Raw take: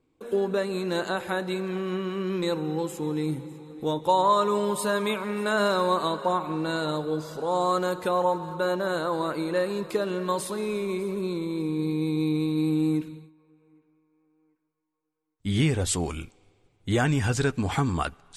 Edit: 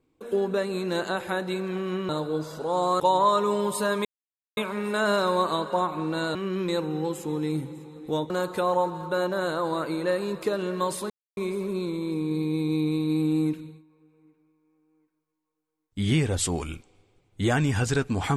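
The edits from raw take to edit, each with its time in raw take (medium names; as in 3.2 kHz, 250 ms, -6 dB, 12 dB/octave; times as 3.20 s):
2.09–4.04 s: swap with 6.87–7.78 s
5.09 s: insert silence 0.52 s
10.58–10.85 s: mute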